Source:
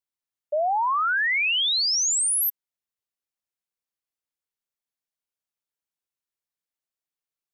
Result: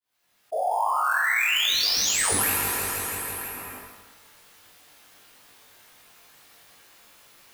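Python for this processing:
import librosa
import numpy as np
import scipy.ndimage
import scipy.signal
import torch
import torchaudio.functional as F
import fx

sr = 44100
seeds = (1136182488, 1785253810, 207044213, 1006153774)

p1 = fx.fade_in_head(x, sr, length_s=1.36)
p2 = scipy.signal.sosfilt(scipy.signal.butter(2, 680.0, 'highpass', fs=sr, output='sos'), p1)
p3 = fx.whisperise(p2, sr, seeds[0])
p4 = fx.sample_hold(p3, sr, seeds[1], rate_hz=10000.0, jitter_pct=0)
p5 = p3 + (p4 * 10.0 ** (-4.0 / 20.0))
p6 = fx.doubler(p5, sr, ms=20.0, db=-4.5)
p7 = p6 + fx.echo_feedback(p6, sr, ms=163, feedback_pct=59, wet_db=-13.5, dry=0)
p8 = fx.rev_plate(p7, sr, seeds[2], rt60_s=1.3, hf_ratio=0.7, predelay_ms=0, drr_db=0.0)
p9 = fx.env_flatten(p8, sr, amount_pct=70)
y = p9 * 10.0 ** (-7.5 / 20.0)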